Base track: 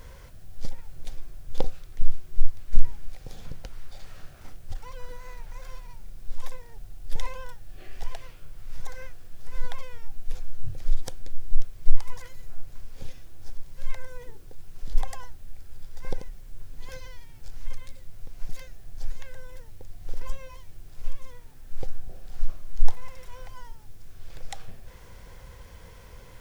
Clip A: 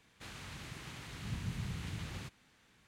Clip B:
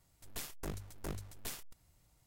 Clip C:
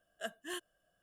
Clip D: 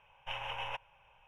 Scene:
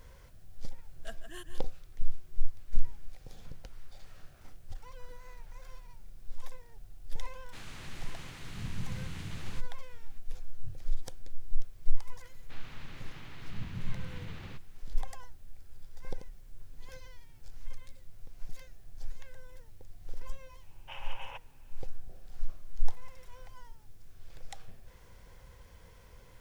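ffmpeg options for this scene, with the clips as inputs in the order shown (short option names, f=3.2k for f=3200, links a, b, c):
-filter_complex "[1:a]asplit=2[a][b];[0:a]volume=-8dB[c];[3:a]aecho=1:1:160:0.355[d];[b]lowpass=3.9k[e];[d]atrim=end=1.02,asetpts=PTS-STARTPTS,volume=-6dB,afade=t=in:d=0.004:c=hsin,afade=t=out:st=1.016:d=0.004:c=hsin,adelay=840[f];[a]atrim=end=2.87,asetpts=PTS-STARTPTS,afade=t=in:d=0.004:c=hsin,afade=t=out:st=2.866:d=0.004:c=hsin,adelay=7320[g];[e]atrim=end=2.87,asetpts=PTS-STARTPTS,volume=-1.5dB,afade=t=in:d=0.004:c=hsin,afade=t=out:st=2.866:d=0.004:c=hsin,adelay=12290[h];[4:a]atrim=end=1.27,asetpts=PTS-STARTPTS,volume=-6dB,afade=t=in:d=0.004:c=hsin,afade=t=out:st=1.266:d=0.004:c=hsin,adelay=20610[i];[c][f][g][h][i]amix=inputs=5:normalize=0"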